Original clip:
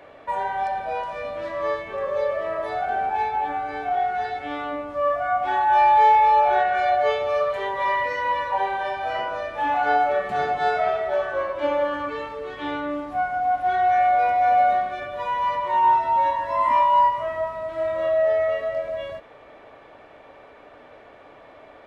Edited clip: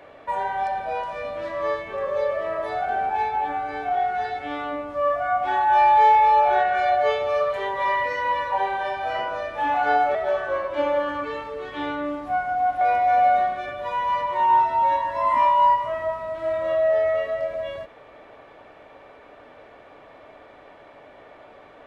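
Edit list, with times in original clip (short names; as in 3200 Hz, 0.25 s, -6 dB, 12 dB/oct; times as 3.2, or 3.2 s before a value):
10.15–11 cut
13.66–14.15 cut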